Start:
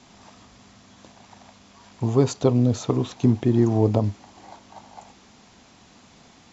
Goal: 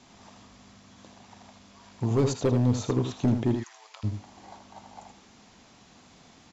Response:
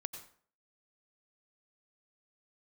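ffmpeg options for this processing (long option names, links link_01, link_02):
-filter_complex "[0:a]asplit=3[link_01][link_02][link_03];[link_01]afade=type=out:start_time=3.54:duration=0.02[link_04];[link_02]highpass=frequency=1400:width=0.5412,highpass=frequency=1400:width=1.3066,afade=type=in:start_time=3.54:duration=0.02,afade=type=out:start_time=4.03:duration=0.02[link_05];[link_03]afade=type=in:start_time=4.03:duration=0.02[link_06];[link_04][link_05][link_06]amix=inputs=3:normalize=0,volume=14dB,asoftclip=hard,volume=-14dB,aecho=1:1:80:0.422,volume=-3.5dB"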